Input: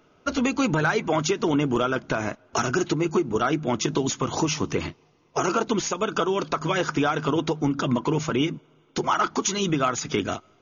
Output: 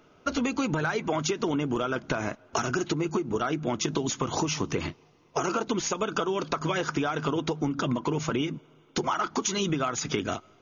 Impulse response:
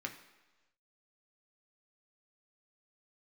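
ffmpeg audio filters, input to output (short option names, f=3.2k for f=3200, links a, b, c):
-af "acompressor=threshold=-25dB:ratio=6,volume=1dB"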